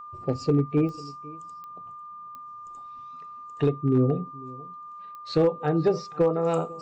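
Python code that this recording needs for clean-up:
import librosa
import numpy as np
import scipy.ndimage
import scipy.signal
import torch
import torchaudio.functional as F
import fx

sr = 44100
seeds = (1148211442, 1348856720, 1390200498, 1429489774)

y = fx.fix_declip(x, sr, threshold_db=-14.0)
y = fx.fix_declick_ar(y, sr, threshold=10.0)
y = fx.notch(y, sr, hz=1200.0, q=30.0)
y = fx.fix_echo_inverse(y, sr, delay_ms=498, level_db=-21.5)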